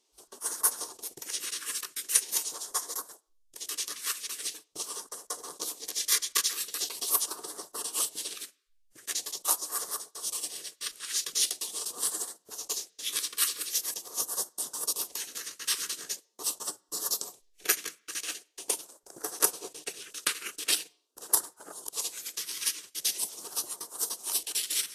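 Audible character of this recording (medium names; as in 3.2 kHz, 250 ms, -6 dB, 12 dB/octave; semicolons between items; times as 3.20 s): phasing stages 2, 0.43 Hz, lowest notch 750–2400 Hz; Vorbis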